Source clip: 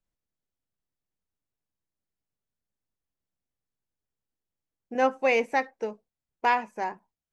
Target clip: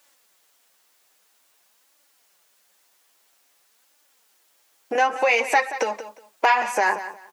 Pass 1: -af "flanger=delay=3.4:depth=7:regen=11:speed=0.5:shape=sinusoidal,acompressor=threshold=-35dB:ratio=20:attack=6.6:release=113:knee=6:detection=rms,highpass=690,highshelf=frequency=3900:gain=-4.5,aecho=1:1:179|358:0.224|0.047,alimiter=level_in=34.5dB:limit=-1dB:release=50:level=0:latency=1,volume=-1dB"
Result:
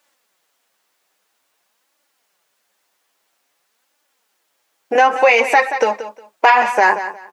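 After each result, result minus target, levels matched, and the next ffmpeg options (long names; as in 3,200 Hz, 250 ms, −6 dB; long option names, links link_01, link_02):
downward compressor: peak gain reduction −10 dB; 8,000 Hz band −6.5 dB
-af "flanger=delay=3.4:depth=7:regen=11:speed=0.5:shape=sinusoidal,acompressor=threshold=-45.5dB:ratio=20:attack=6.6:release=113:knee=6:detection=rms,highpass=690,highshelf=frequency=3900:gain=-4.5,aecho=1:1:179|358:0.224|0.047,alimiter=level_in=34.5dB:limit=-1dB:release=50:level=0:latency=1,volume=-1dB"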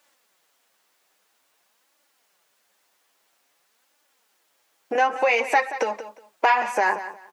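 8,000 Hz band −4.5 dB
-af "flanger=delay=3.4:depth=7:regen=11:speed=0.5:shape=sinusoidal,acompressor=threshold=-45.5dB:ratio=20:attack=6.6:release=113:knee=6:detection=rms,highpass=690,highshelf=frequency=3900:gain=2.5,aecho=1:1:179|358:0.224|0.047,alimiter=level_in=34.5dB:limit=-1dB:release=50:level=0:latency=1,volume=-1dB"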